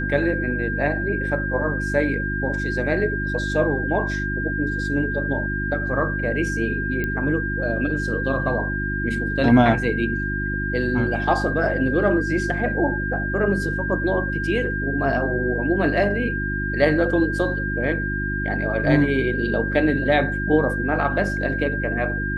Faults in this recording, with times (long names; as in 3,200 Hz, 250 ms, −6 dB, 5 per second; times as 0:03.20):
mains hum 50 Hz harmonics 7 −27 dBFS
whistle 1,600 Hz −26 dBFS
0:07.04: click −14 dBFS